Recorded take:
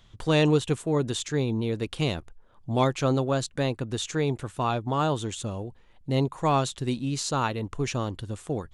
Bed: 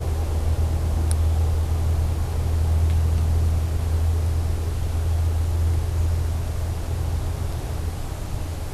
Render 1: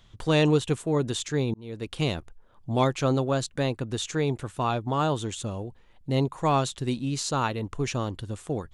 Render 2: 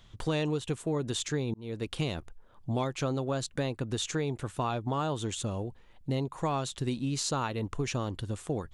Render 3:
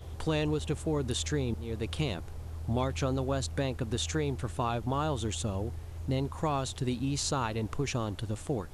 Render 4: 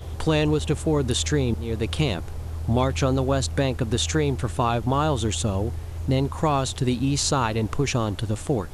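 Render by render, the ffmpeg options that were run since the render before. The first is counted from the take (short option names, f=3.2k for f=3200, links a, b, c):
-filter_complex "[0:a]asplit=2[a][b];[a]atrim=end=1.54,asetpts=PTS-STARTPTS,afade=t=out:st=1.536:d=0.004:c=hsin[c];[b]atrim=start=1.54,asetpts=PTS-STARTPTS,afade=t=in:d=0.46[d];[c][d]concat=n=2:v=0:a=1"
-af "acompressor=threshold=-27dB:ratio=6"
-filter_complex "[1:a]volume=-18.5dB[a];[0:a][a]amix=inputs=2:normalize=0"
-af "volume=8.5dB"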